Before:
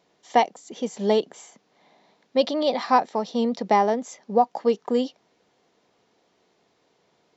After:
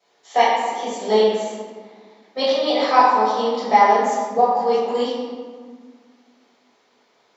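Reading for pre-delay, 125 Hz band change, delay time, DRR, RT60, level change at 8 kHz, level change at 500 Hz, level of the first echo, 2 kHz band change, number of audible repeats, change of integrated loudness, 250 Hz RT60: 4 ms, no reading, no echo, -12.5 dB, 1.7 s, no reading, +4.5 dB, no echo, +8.5 dB, no echo, +5.0 dB, 2.5 s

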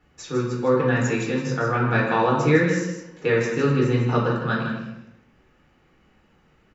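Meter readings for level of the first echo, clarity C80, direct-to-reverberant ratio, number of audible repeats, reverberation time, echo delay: -7.5 dB, 4.0 dB, -4.5 dB, 1, 0.85 s, 157 ms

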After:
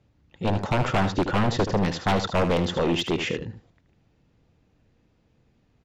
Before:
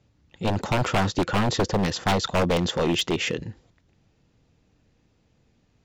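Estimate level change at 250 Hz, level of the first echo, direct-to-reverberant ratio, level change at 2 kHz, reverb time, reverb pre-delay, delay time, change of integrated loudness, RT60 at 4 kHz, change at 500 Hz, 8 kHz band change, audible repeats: +0.5 dB, -10.0 dB, no reverb, -1.0 dB, no reverb, no reverb, 77 ms, -0.5 dB, no reverb, 0.0 dB, -6.5 dB, 1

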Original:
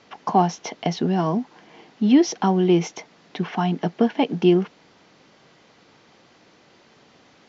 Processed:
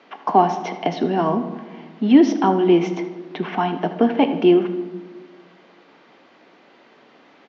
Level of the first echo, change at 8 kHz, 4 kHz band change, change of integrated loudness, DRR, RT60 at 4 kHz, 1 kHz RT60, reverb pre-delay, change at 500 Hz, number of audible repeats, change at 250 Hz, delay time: -15.0 dB, no reading, 0.0 dB, +2.5 dB, 8.0 dB, 0.75 s, 1.3 s, 3 ms, +4.0 dB, 1, +2.5 dB, 79 ms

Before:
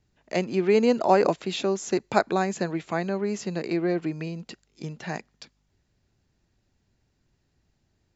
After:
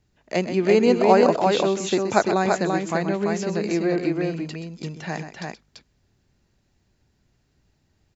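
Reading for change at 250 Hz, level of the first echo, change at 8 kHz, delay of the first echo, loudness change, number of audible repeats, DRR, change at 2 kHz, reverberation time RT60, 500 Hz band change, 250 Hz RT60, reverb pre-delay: +4.5 dB, -10.5 dB, no reading, 127 ms, +4.0 dB, 2, no reverb, +4.5 dB, no reverb, +4.5 dB, no reverb, no reverb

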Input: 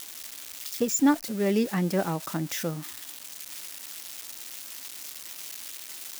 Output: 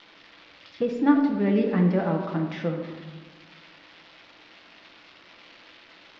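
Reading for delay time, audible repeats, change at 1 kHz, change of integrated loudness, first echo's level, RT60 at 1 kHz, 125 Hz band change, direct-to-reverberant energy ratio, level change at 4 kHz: no echo, no echo, +1.5 dB, +6.0 dB, no echo, 1.2 s, +5.0 dB, 2.0 dB, -7.0 dB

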